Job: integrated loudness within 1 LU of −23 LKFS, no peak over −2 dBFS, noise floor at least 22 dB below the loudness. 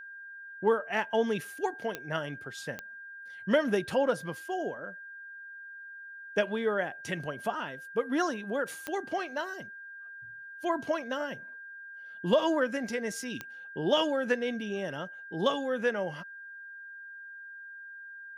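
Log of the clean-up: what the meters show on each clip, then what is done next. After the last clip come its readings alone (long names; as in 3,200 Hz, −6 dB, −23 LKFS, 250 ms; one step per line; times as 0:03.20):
number of clicks 4; interfering tone 1,600 Hz; level of the tone −43 dBFS; integrated loudness −32.0 LKFS; sample peak −14.0 dBFS; target loudness −23.0 LKFS
→ click removal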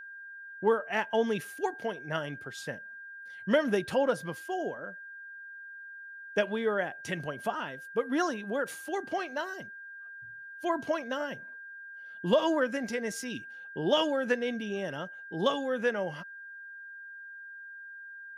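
number of clicks 0; interfering tone 1,600 Hz; level of the tone −43 dBFS
→ notch filter 1,600 Hz, Q 30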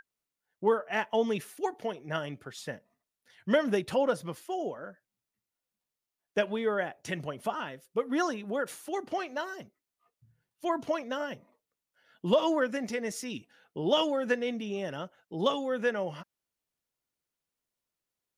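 interfering tone none found; integrated loudness −32.0 LKFS; sample peak −14.0 dBFS; target loudness −23.0 LKFS
→ level +9 dB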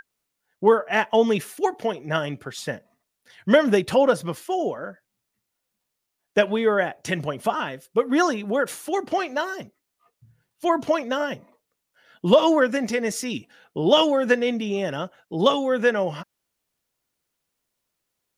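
integrated loudness −23.0 LKFS; sample peak −5.0 dBFS; background noise floor −80 dBFS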